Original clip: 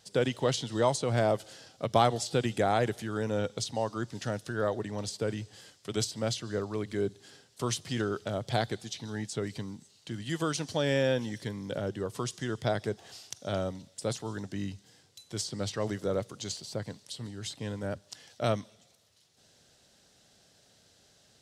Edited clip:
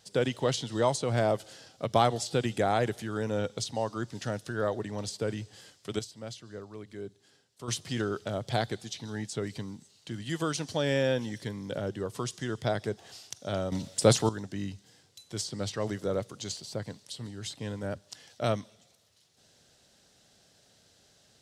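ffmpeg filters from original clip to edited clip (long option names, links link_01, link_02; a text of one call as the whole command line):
ffmpeg -i in.wav -filter_complex "[0:a]asplit=5[link_01][link_02][link_03][link_04][link_05];[link_01]atrim=end=5.992[link_06];[link_02]atrim=start=5.988:end=7.682,asetpts=PTS-STARTPTS,volume=-10dB[link_07];[link_03]atrim=start=7.678:end=13.722[link_08];[link_04]atrim=start=13.718:end=14.292,asetpts=PTS-STARTPTS,volume=11.5dB[link_09];[link_05]atrim=start=14.288[link_10];[link_06][link_07]acrossfade=duration=0.004:curve1=hsin:curve2=hsin[link_11];[link_11][link_08]acrossfade=duration=0.004:curve1=hsin:curve2=hsin[link_12];[link_12][link_09]acrossfade=duration=0.004:curve1=hsin:curve2=hsin[link_13];[link_13][link_10]acrossfade=duration=0.004:curve1=hsin:curve2=hsin" out.wav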